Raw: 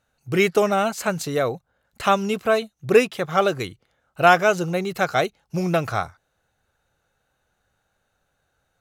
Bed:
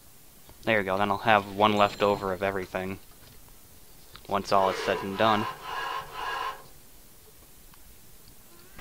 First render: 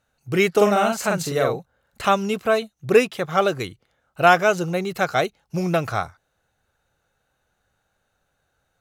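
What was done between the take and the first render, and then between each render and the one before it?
0.53–2.05 doubler 44 ms -2.5 dB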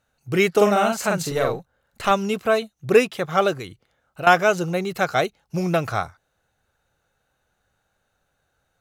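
1.3–2.11 half-wave gain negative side -3 dB; 3.53–4.27 compressor 2:1, threshold -33 dBFS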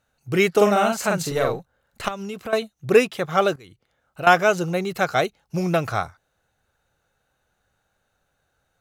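2.08–2.53 compressor 4:1, threshold -29 dBFS; 3.56–4.23 fade in equal-power, from -19 dB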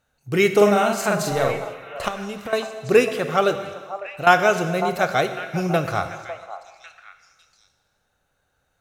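delay with a stepping band-pass 0.551 s, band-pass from 810 Hz, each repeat 1.4 oct, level -9 dB; non-linear reverb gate 0.49 s falling, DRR 8 dB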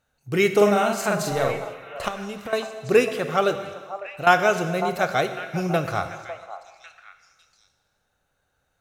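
gain -2 dB

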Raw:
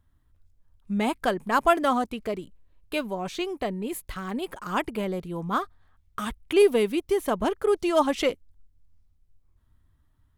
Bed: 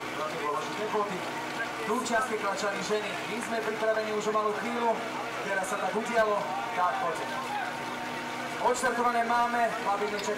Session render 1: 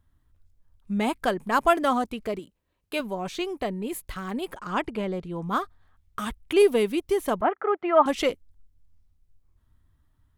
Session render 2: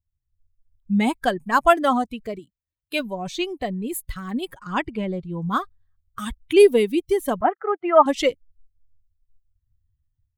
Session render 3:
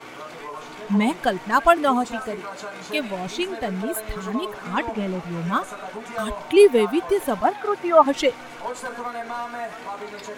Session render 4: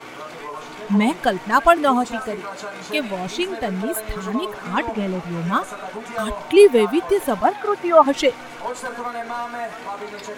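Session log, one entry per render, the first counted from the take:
2.39–3 HPF 220 Hz 6 dB/oct; 4.56–5.42 air absorption 62 m; 7.41–8.06 speaker cabinet 300–2300 Hz, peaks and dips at 450 Hz -5 dB, 740 Hz +9 dB, 1300 Hz +7 dB, 2000 Hz +6 dB
per-bin expansion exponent 1.5; AGC gain up to 8 dB
add bed -4.5 dB
gain +2.5 dB; limiter -1 dBFS, peak gain reduction 1 dB

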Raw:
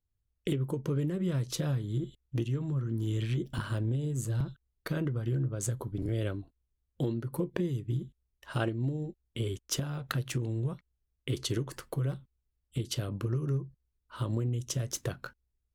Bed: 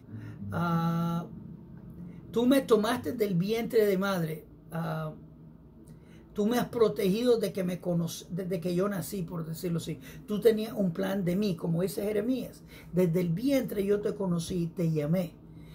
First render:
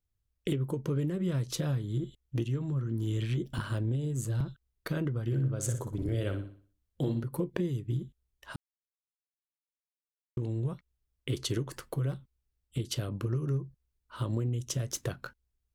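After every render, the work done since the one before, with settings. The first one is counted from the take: 5.25–7.24 flutter echo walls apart 10.3 m, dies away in 0.45 s; 8.56–10.37 mute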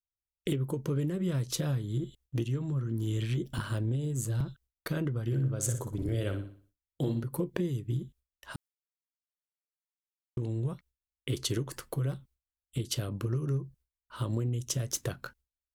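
gate with hold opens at -57 dBFS; high shelf 6100 Hz +5.5 dB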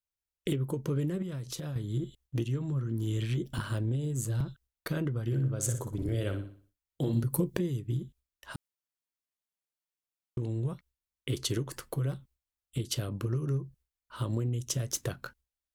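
1.22–1.76 compressor, threshold -34 dBFS; 7.13–7.59 tone controls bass +6 dB, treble +9 dB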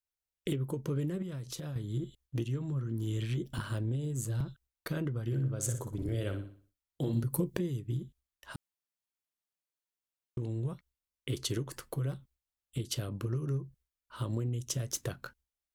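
gain -2.5 dB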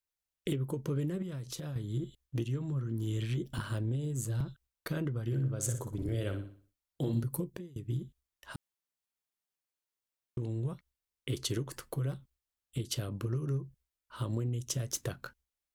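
7.14–7.76 fade out, to -24 dB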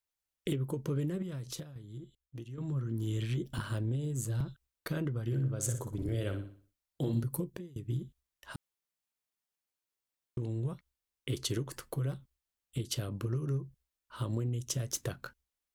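1.63–2.58 gain -10.5 dB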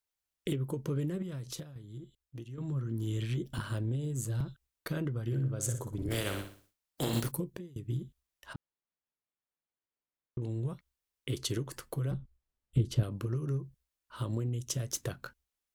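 6.1–7.3 spectral contrast lowered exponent 0.54; 8.53–10.42 tape spacing loss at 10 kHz 29 dB; 12.11–13.03 tilt -3 dB/oct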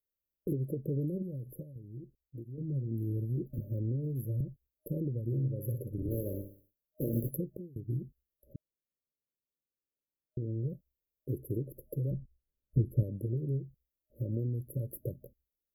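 FFT band-reject 620–11000 Hz

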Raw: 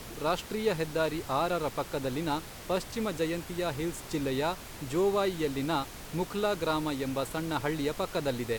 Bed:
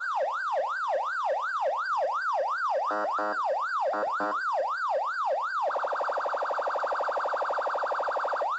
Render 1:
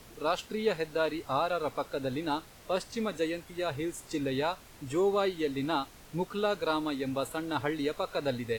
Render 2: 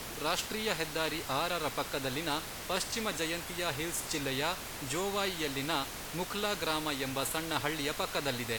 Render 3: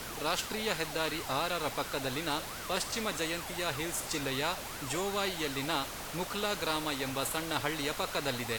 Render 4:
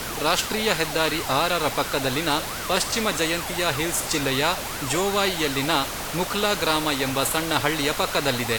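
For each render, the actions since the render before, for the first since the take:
noise print and reduce 9 dB
spectral compressor 2:1
add bed -20 dB
gain +10.5 dB

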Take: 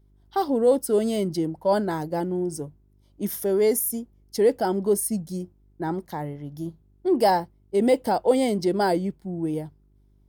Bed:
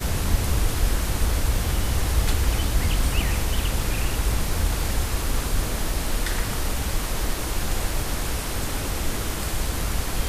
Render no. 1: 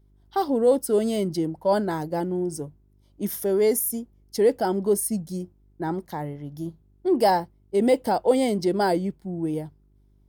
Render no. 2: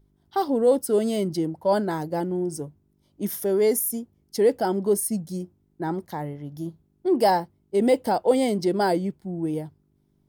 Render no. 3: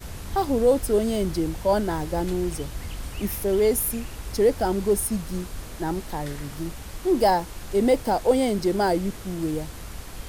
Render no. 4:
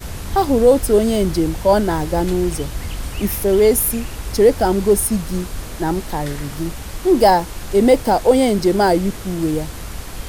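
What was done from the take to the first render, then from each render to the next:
nothing audible
de-hum 50 Hz, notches 2
add bed -12 dB
gain +7.5 dB; limiter -2 dBFS, peak gain reduction 1.5 dB

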